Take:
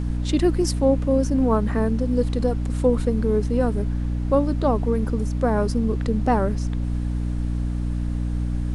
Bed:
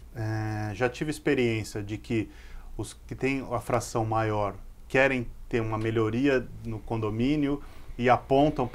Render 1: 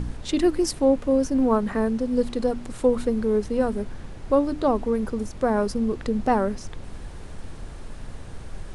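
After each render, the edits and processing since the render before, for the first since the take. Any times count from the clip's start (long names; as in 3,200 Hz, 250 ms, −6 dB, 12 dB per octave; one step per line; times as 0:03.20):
hum removal 60 Hz, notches 5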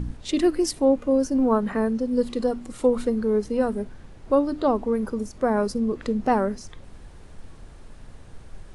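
noise reduction from a noise print 7 dB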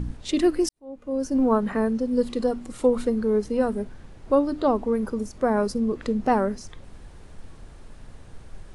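0:00.69–0:01.36: fade in quadratic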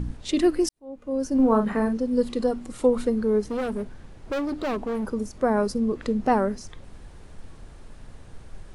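0:01.35–0:01.98: double-tracking delay 42 ms −7.5 dB
0:03.44–0:05.06: hard clipping −24.5 dBFS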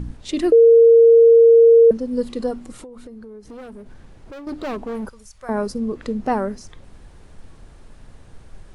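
0:00.52–0:01.91: beep over 461 Hz −6.5 dBFS
0:02.80–0:04.47: downward compressor 16 to 1, threshold −35 dBFS
0:05.09–0:05.49: guitar amp tone stack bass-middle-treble 10-0-10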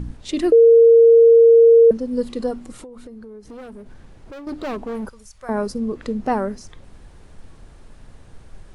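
no processing that can be heard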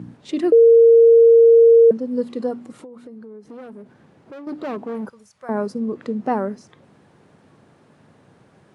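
high-pass filter 130 Hz 24 dB per octave
high-shelf EQ 3,100 Hz −10.5 dB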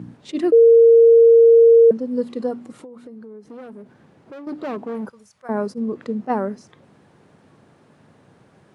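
level that may rise only so fast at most 510 dB per second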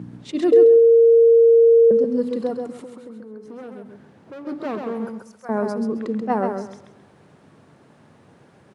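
repeating echo 133 ms, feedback 23%, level −5 dB
spring reverb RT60 1.3 s, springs 51/59 ms, chirp 65 ms, DRR 19 dB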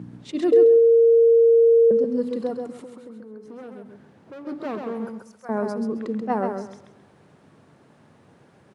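level −2.5 dB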